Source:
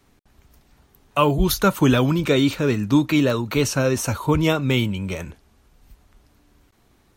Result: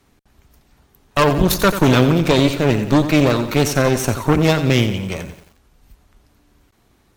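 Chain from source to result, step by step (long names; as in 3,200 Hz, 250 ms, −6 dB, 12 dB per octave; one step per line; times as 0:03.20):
harmonic generator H 6 −13 dB, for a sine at −4.5 dBFS
feedback echo at a low word length 89 ms, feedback 55%, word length 7 bits, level −11 dB
level +1.5 dB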